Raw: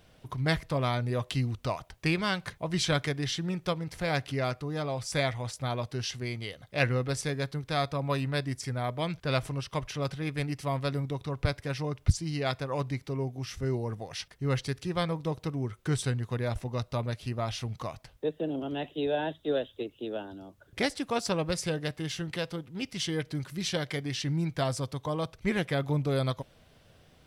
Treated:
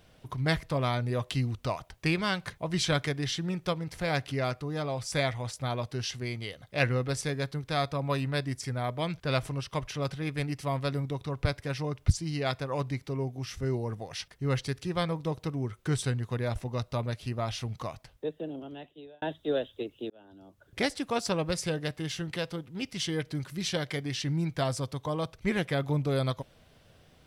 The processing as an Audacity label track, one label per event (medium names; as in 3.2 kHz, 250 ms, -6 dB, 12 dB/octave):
17.870000	19.220000	fade out
20.100000	20.790000	fade in